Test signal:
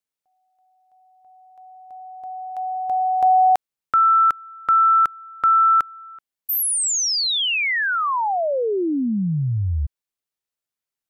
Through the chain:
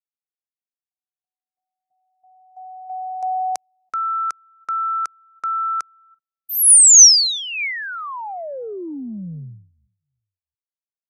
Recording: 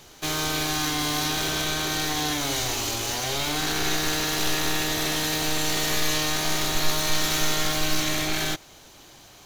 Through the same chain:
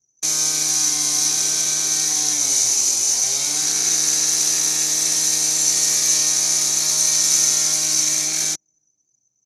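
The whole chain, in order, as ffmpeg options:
ffmpeg -i in.wav -filter_complex "[0:a]aexciter=amount=8.4:drive=3.5:freq=4500,highpass=frequency=130:width=0.5412,highpass=frequency=130:width=1.3066,equalizer=frequency=2300:width_type=q:width=4:gain=7,equalizer=frequency=6000:width_type=q:width=4:gain=8,equalizer=frequency=9800:width_type=q:width=4:gain=4,lowpass=frequency=9800:width=0.5412,lowpass=frequency=9800:width=1.3066,asplit=2[link_01][link_02];[link_02]adelay=336,lowpass=frequency=2000:poles=1,volume=-22dB,asplit=2[link_03][link_04];[link_04]adelay=336,lowpass=frequency=2000:poles=1,volume=0.34[link_05];[link_03][link_05]amix=inputs=2:normalize=0[link_06];[link_01][link_06]amix=inputs=2:normalize=0,anlmdn=6310,volume=-7.5dB" out.wav

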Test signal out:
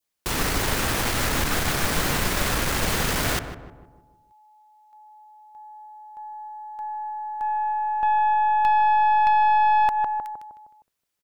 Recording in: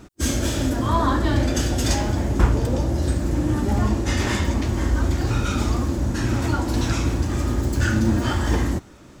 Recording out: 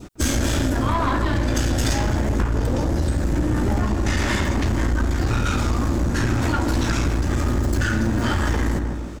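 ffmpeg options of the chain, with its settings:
ffmpeg -i in.wav -filter_complex "[0:a]asplit=2[link_01][link_02];[link_02]adelay=155,lowpass=frequency=1400:poles=1,volume=-9.5dB,asplit=2[link_03][link_04];[link_04]adelay=155,lowpass=frequency=1400:poles=1,volume=0.5,asplit=2[link_05][link_06];[link_06]adelay=155,lowpass=frequency=1400:poles=1,volume=0.5,asplit=2[link_07][link_08];[link_08]adelay=155,lowpass=frequency=1400:poles=1,volume=0.5,asplit=2[link_09][link_10];[link_10]adelay=155,lowpass=frequency=1400:poles=1,volume=0.5,asplit=2[link_11][link_12];[link_12]adelay=155,lowpass=frequency=1400:poles=1,volume=0.5[link_13];[link_01][link_03][link_05][link_07][link_09][link_11][link_13]amix=inputs=7:normalize=0,adynamicequalizer=threshold=0.01:dfrequency=1600:dqfactor=1.3:tfrequency=1600:tqfactor=1.3:attack=5:release=100:ratio=0.375:range=2:mode=boostabove:tftype=bell,acompressor=threshold=-21dB:ratio=8,aeval=exprs='(tanh(12.6*val(0)+0.4)-tanh(0.4))/12.6':channel_layout=same,volume=7.5dB" out.wav

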